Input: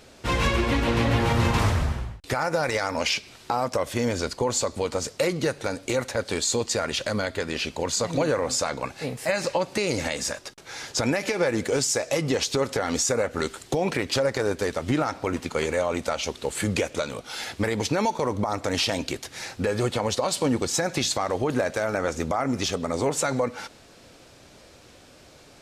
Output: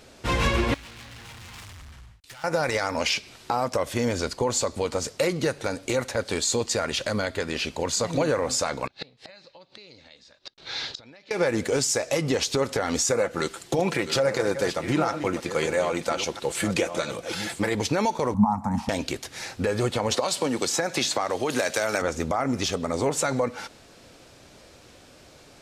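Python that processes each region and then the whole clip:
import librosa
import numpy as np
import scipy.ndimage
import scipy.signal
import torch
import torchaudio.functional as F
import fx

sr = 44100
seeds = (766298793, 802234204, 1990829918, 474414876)

y = fx.chain(x, sr, fx.overload_stage(gain_db=28.5),
    fx.tone_stack(knobs='5-5-5'), at=(0.74, 2.44))
y = fx.chain(y, sr, fx.gate_flip(shuts_db=-23.0, range_db=-26),
    fx.lowpass_res(hz=4000.0, q=4.4), at=(8.87, 11.31))
y = fx.chain(y, sr, fx.reverse_delay(ms=657, wet_db=-9.5),
    fx.low_shelf(hz=66.0, db=-9.0),
    fx.comb(ms=5.9, depth=0.38), at=(13.11, 17.75))
y = fx.chain(y, sr, fx.curve_eq(hz=(130.0, 220.0, 360.0, 600.0, 860.0, 1400.0, 3100.0, 9200.0), db=(0, 13, -30, -15, 10, -9, -27, -11)),
    fx.band_squash(depth_pct=40), at=(18.34, 18.89))
y = fx.chain(y, sr, fx.highpass(hz=300.0, slope=6),
    fx.band_squash(depth_pct=100), at=(20.11, 22.02))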